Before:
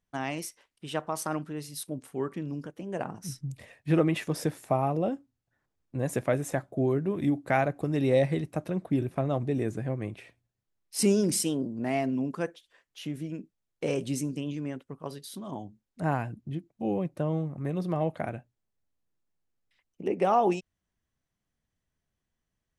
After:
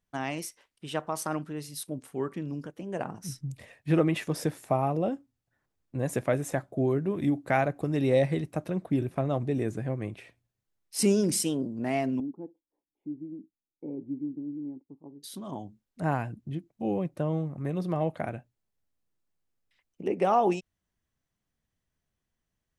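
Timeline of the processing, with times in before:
0:12.20–0:15.23: formant resonators in series u

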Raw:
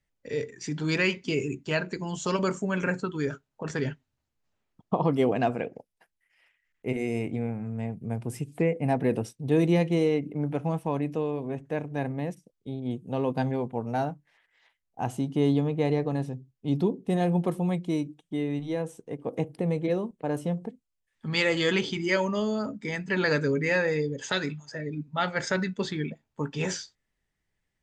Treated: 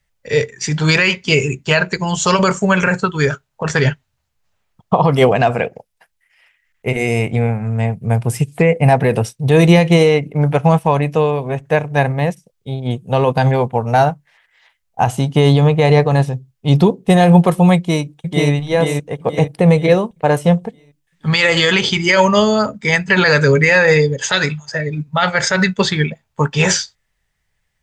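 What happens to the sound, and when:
0:17.76–0:18.51: delay throw 480 ms, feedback 50%, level −2 dB
whole clip: parametric band 290 Hz −14 dB 0.96 octaves; boost into a limiter +22.5 dB; expander for the loud parts 1.5 to 1, over −27 dBFS

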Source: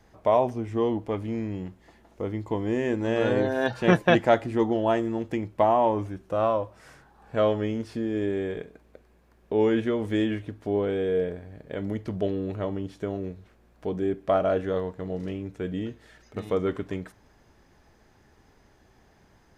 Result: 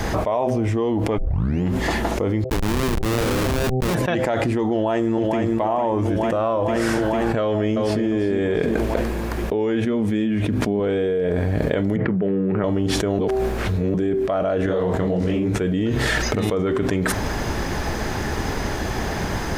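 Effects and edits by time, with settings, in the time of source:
0:01.18: tape start 0.45 s
0:02.44–0:03.95: comparator with hysteresis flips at −25 dBFS
0:04.72–0:05.40: delay throw 450 ms, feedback 65%, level −7.5 dB
0:07.41–0:08.04: delay throw 350 ms, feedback 20%, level −7 dB
0:09.86–0:10.80: hollow resonant body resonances 210/2,400 Hz, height 10 dB
0:11.96–0:12.64: loudspeaker in its box 170–2,100 Hz, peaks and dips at 180 Hz +7 dB, 280 Hz −4 dB, 640 Hz −10 dB, 1,000 Hz −4 dB
0:13.19–0:13.94: reverse
0:14.66–0:15.61: micro pitch shift up and down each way 58 cents
whole clip: hum removal 128.4 Hz, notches 6; envelope flattener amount 100%; level −5.5 dB

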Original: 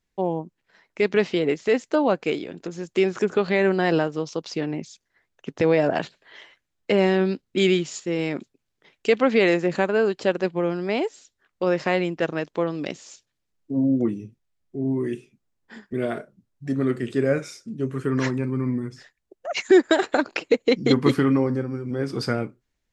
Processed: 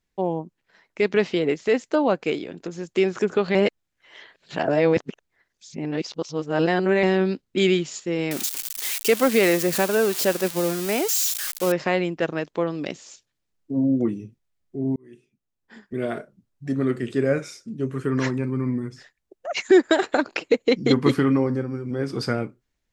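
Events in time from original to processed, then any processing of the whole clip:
0:03.55–0:07.03: reverse
0:08.31–0:11.72: spike at every zero crossing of −16.5 dBFS
0:14.96–0:16.17: fade in

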